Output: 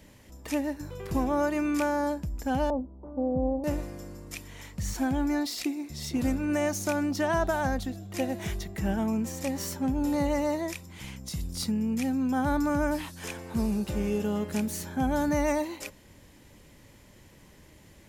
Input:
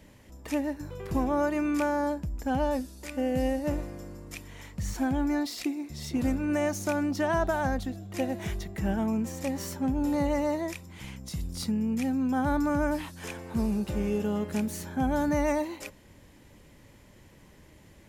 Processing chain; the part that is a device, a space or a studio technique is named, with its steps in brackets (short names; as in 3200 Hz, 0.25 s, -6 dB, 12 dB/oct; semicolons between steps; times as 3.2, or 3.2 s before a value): 2.7–3.64 steep low-pass 1100 Hz 48 dB/oct; presence and air boost (bell 5000 Hz +2.5 dB 1.8 oct; high shelf 9500 Hz +4.5 dB)